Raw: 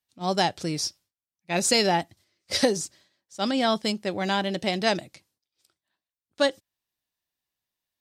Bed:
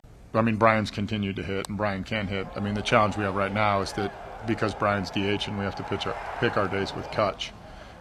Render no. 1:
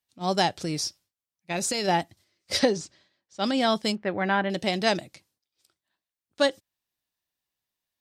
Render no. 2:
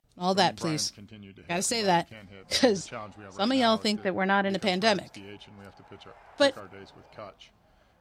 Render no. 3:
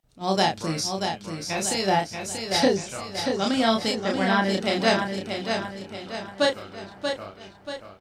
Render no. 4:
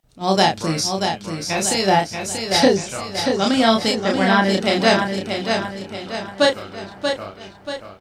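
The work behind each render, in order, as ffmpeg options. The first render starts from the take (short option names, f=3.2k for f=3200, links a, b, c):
-filter_complex "[0:a]asplit=3[a][b][c];[a]afade=t=out:st=0.56:d=0.02[d];[b]acompressor=threshold=-24dB:ratio=6:attack=3.2:release=140:knee=1:detection=peak,afade=t=in:st=0.56:d=0.02,afade=t=out:st=1.87:d=0.02[e];[c]afade=t=in:st=1.87:d=0.02[f];[d][e][f]amix=inputs=3:normalize=0,asettb=1/sr,asplit=3[g][h][i];[g]atrim=end=2.594[j];[h]atrim=start=2.59:end=3.44,asetpts=PTS-STARTPTS,afade=t=in:d=0.004:c=qsin,afade=t=out:st=0.846:d=0.004:c=qsin,lowpass=4.8k[k];[i]atrim=start=3.436[l];[j][k]acrossfade=d=0.004:c1=hsin:c2=qsin[m];[m][l]acrossfade=d=0.004:c1=qsin:c2=hsin,asettb=1/sr,asplit=3[n][o][p];[n]atrim=end=3.954[q];[o]atrim=start=3.95:end=4.5,asetpts=PTS-STARTPTS,afade=t=in:d=0.004:c=qsin,afade=t=out:st=0.546:d=0.004:c=qsin,lowpass=f=1.8k:t=q:w=1.6[r];[p]atrim=start=4.496[s];[q][r]acrossfade=d=0.004:c1=hsin:c2=qsin[t];[t][s]acrossfade=d=0.004:c1=qsin:c2=hsin"
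-filter_complex "[1:a]volume=-18.5dB[a];[0:a][a]amix=inputs=2:normalize=0"
-filter_complex "[0:a]asplit=2[a][b];[b]adelay=31,volume=-3dB[c];[a][c]amix=inputs=2:normalize=0,asplit=2[d][e];[e]aecho=0:1:634|1268|1902|2536|3170:0.501|0.226|0.101|0.0457|0.0206[f];[d][f]amix=inputs=2:normalize=0"
-af "volume=6dB,alimiter=limit=-1dB:level=0:latency=1"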